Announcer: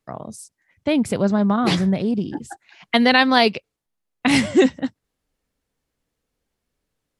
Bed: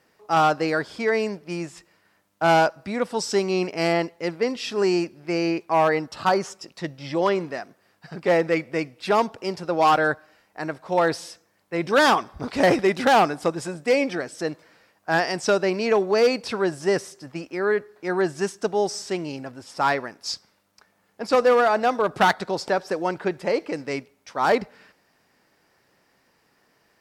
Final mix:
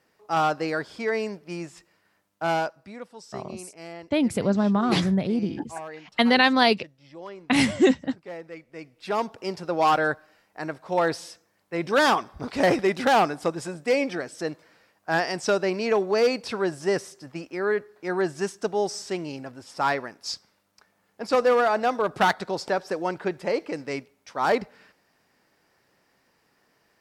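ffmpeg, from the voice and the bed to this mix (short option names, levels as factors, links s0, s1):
-filter_complex "[0:a]adelay=3250,volume=0.668[s0];[1:a]volume=3.98,afade=t=out:st=2.17:d=0.97:silence=0.188365,afade=t=in:st=8.7:d=0.77:silence=0.158489[s1];[s0][s1]amix=inputs=2:normalize=0"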